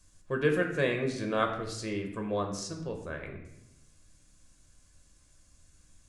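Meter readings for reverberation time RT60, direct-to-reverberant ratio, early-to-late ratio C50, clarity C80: 0.85 s, 2.5 dB, 7.5 dB, 9.5 dB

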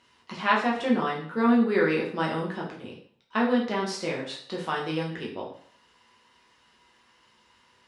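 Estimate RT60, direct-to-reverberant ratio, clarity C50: 0.55 s, −3.5 dB, 6.5 dB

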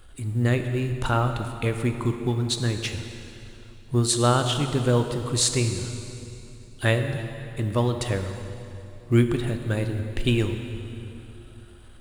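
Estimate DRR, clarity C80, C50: 6.0 dB, 7.5 dB, 7.0 dB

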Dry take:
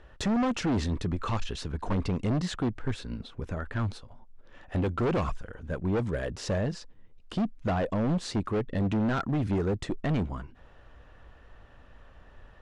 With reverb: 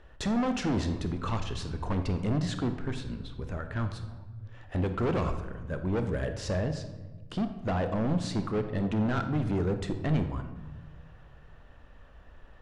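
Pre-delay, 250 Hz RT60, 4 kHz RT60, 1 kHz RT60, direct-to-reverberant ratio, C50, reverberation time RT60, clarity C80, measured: 25 ms, 1.6 s, 0.80 s, 1.1 s, 7.5 dB, 9.0 dB, 1.2 s, 11.0 dB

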